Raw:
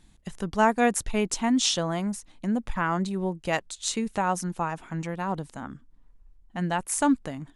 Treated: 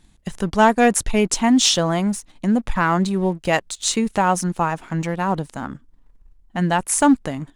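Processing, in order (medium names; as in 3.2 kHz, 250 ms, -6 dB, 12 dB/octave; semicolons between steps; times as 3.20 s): waveshaping leveller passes 1; trim +4.5 dB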